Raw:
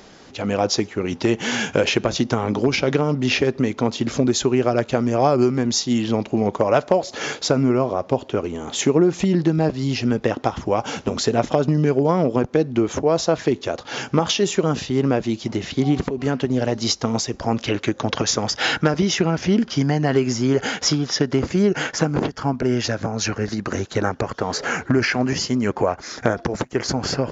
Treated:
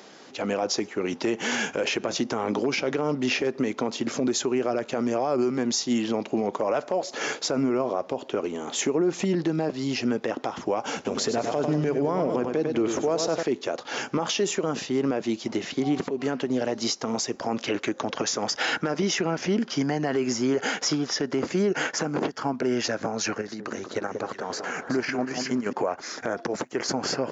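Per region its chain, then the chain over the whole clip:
10.95–13.43 bell 66 Hz +5.5 dB 1.6 oct + feedback echo 98 ms, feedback 47%, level -9 dB
23.41–25.73 level quantiser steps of 10 dB + echo with dull and thin repeats by turns 0.185 s, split 1300 Hz, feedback 59%, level -6 dB
whole clip: HPF 240 Hz 12 dB/oct; dynamic EQ 3700 Hz, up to -4 dB, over -40 dBFS, Q 1.9; limiter -14.5 dBFS; gain -1.5 dB

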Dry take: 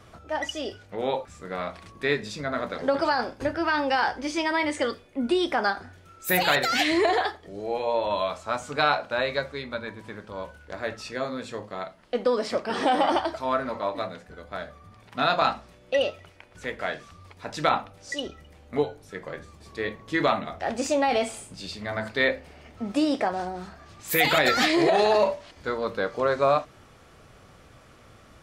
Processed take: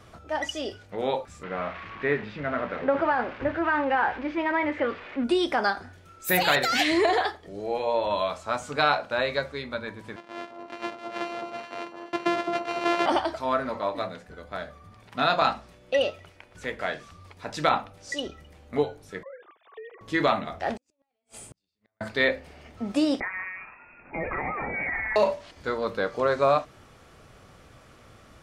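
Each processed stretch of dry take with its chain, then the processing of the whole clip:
1.43–5.24 switching spikes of -17 dBFS + LPF 2200 Hz 24 dB/oct
10.16–13.06 sample sorter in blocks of 128 samples + BPF 360–3200 Hz + echo with dull and thin repeats by turns 0.213 s, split 1200 Hz, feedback 57%, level -3.5 dB
19.23–20.01 sine-wave speech + dynamic EQ 510 Hz, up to +5 dB, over -42 dBFS, Q 1.4 + compressor 16:1, threshold -38 dBFS
20.76–22.01 compressor 8:1, threshold -38 dBFS + flipped gate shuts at -33 dBFS, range -42 dB
23.2–25.16 tilt shelf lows -6 dB, about 1500 Hz + compressor 2.5:1, threshold -28 dBFS + inverted band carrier 2600 Hz
whole clip: dry

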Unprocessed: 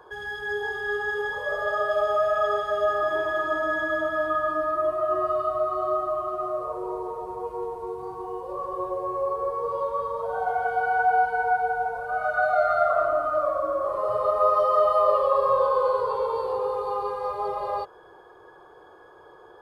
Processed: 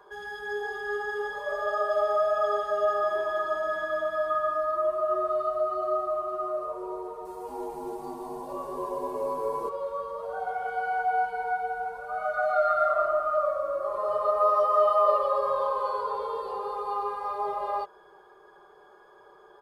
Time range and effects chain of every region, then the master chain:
7.25–9.69 high shelf 4000 Hz +12 dB + frequency-shifting echo 0.229 s, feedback 32%, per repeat -110 Hz, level -4 dB
whole clip: low shelf 480 Hz -5.5 dB; comb 5 ms, depth 80%; gain -4 dB

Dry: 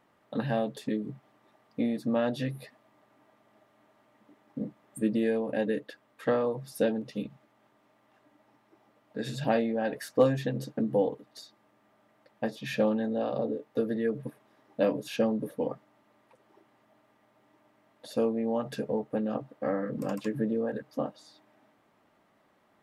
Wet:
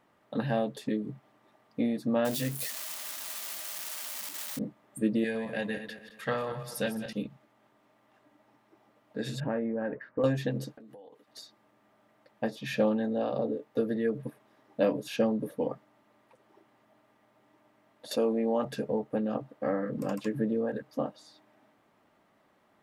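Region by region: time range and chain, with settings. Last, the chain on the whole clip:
2.25–4.59 switching spikes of -25.5 dBFS + notches 50/100/150/200/250/300/350/400/450 Hz
5.24–7.13 regenerating reverse delay 0.107 s, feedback 56%, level -9.5 dB + EQ curve 190 Hz 0 dB, 280 Hz -11 dB, 2000 Hz +4 dB
9.4–10.24 LPF 1800 Hz 24 dB/oct + bell 730 Hz -11.5 dB 0.24 oct + compressor 2.5:1, threshold -28 dBFS
10.75–11.28 HPF 1200 Hz 6 dB/oct + compressor 16:1, threshold -46 dBFS
18.11–18.65 HPF 220 Hz + notch 5100 Hz, Q 28 + fast leveller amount 50%
whole clip: dry

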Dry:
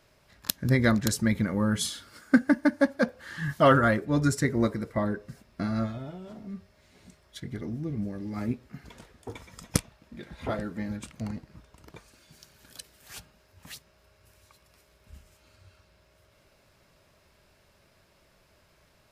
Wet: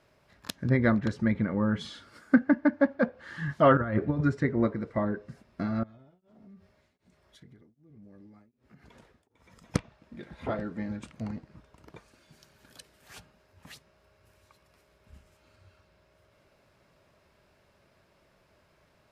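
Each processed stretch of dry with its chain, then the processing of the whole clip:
3.77–4.21 bell 79 Hz +9.5 dB 1.5 oct + negative-ratio compressor -25 dBFS, ratio -0.5
5.83–9.74 compressor, threshold -48 dBFS + beating tremolo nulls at 1.3 Hz
whole clip: low shelf 64 Hz -9 dB; treble ducked by the level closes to 2800 Hz, closed at -23.5 dBFS; high shelf 3200 Hz -9 dB

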